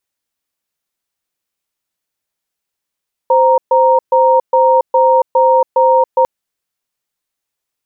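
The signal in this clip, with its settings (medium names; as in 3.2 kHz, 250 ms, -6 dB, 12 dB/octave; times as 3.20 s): cadence 520 Hz, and 933 Hz, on 0.28 s, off 0.13 s, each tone -9.5 dBFS 2.95 s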